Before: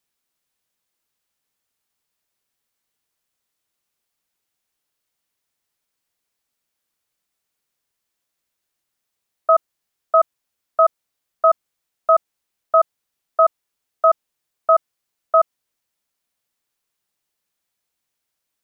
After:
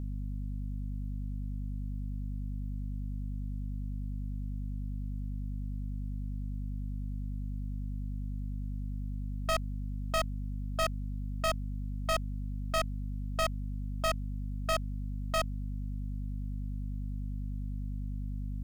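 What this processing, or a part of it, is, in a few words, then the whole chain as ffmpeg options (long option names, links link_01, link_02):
valve amplifier with mains hum: -af "aeval=exprs='(tanh(31.6*val(0)+0.35)-tanh(0.35))/31.6':channel_layout=same,aeval=exprs='val(0)+0.0141*(sin(2*PI*50*n/s)+sin(2*PI*2*50*n/s)/2+sin(2*PI*3*50*n/s)/3+sin(2*PI*4*50*n/s)/4+sin(2*PI*5*50*n/s)/5)':channel_layout=same,volume=2.5dB"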